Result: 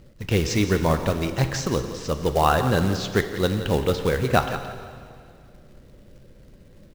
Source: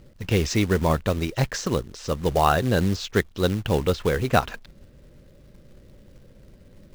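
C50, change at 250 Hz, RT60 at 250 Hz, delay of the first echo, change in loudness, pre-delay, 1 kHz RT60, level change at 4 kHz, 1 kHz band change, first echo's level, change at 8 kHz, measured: 8.0 dB, +0.5 dB, 2.3 s, 172 ms, +0.5 dB, 7 ms, 2.2 s, +1.0 dB, +1.0 dB, -12.5 dB, +1.0 dB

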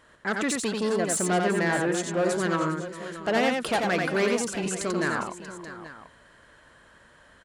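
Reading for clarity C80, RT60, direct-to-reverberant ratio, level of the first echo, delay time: no reverb, no reverb, no reverb, -3.5 dB, 89 ms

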